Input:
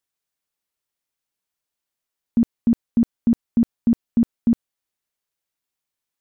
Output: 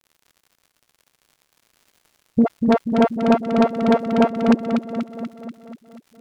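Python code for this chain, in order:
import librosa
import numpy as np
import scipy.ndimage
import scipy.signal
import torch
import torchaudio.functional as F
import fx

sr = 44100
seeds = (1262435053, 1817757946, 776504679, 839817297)

y = fx.sample_sort(x, sr, block=64, at=(2.41, 4.48))
y = scipy.signal.sosfilt(scipy.signal.butter(2, 160.0, 'highpass', fs=sr, output='sos'), y)
y = fx.env_lowpass_down(y, sr, base_hz=770.0, full_db=-17.5)
y = fx.dispersion(y, sr, late='highs', ms=53.0, hz=440.0)
y = fx.dmg_crackle(y, sr, seeds[0], per_s=77.0, level_db=-45.0)
y = fx.echo_feedback(y, sr, ms=242, feedback_pct=59, wet_db=-6.0)
y = fx.doppler_dist(y, sr, depth_ms=0.35)
y = F.gain(torch.from_numpy(y), 4.0).numpy()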